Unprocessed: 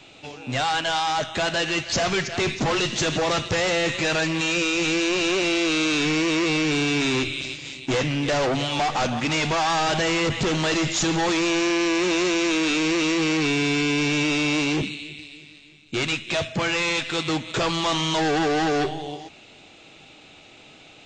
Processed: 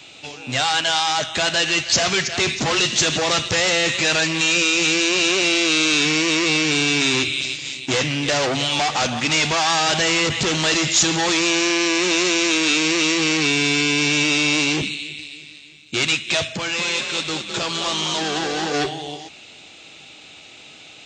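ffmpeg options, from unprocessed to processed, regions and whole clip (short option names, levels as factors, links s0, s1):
-filter_complex "[0:a]asettb=1/sr,asplit=3[s0][s1][s2];[s0]atrim=end=16.574[s3];[s1]atrim=start=16.57:end=18.74,asetpts=PTS-STARTPTS,afade=t=in:d=0.004:c=qsin,afade=t=out:st=2.166:d=0.004:c=qsin,equalizer=f=2000:w=5.2:g=-3.5,asplit=6[s4][s5][s6][s7][s8][s9];[s5]adelay=210,afreqshift=42,volume=0.473[s10];[s6]adelay=420,afreqshift=84,volume=0.209[s11];[s7]adelay=630,afreqshift=126,volume=0.0912[s12];[s8]adelay=840,afreqshift=168,volume=0.0403[s13];[s9]adelay=1050,afreqshift=210,volume=0.0178[s14];[s4][s10][s11][s12][s13][s14]amix=inputs=6:normalize=0,atrim=end_sample=95697,flanger=delay=2:depth=5.9:regen=83:speed=1.3:shape=sinusoidal[s15];[s2]atrim=start=18.736[s16];[s3][s15]acrossfade=d=0.004:c1=hsin:c2=qsin[s17];[s17][s16]acrossfade=d=0.004:c1=qsin:c2=hsin,highpass=45,highshelf=f=2100:g=10"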